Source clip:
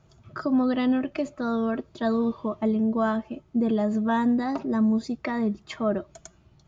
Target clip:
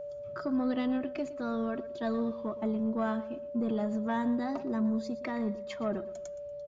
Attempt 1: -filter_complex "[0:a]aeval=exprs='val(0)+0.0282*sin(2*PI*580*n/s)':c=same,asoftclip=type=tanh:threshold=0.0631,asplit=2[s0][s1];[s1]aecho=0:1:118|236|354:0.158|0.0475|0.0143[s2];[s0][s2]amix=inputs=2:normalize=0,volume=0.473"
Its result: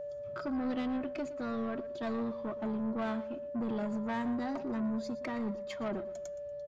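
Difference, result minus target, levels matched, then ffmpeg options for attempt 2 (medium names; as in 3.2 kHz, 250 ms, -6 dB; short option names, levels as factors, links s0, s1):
saturation: distortion +12 dB
-filter_complex "[0:a]aeval=exprs='val(0)+0.0282*sin(2*PI*580*n/s)':c=same,asoftclip=type=tanh:threshold=0.178,asplit=2[s0][s1];[s1]aecho=0:1:118|236|354:0.158|0.0475|0.0143[s2];[s0][s2]amix=inputs=2:normalize=0,volume=0.473"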